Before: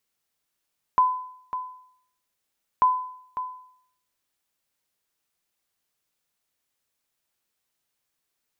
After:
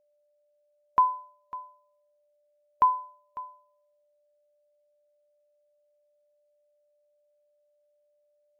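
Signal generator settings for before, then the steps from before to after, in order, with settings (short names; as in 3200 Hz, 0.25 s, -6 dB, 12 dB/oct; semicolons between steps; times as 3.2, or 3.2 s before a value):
sonar ping 1010 Hz, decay 0.66 s, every 1.84 s, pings 2, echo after 0.55 s, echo -11.5 dB -12 dBFS
whine 590 Hz -51 dBFS; upward expander 1.5:1, over -50 dBFS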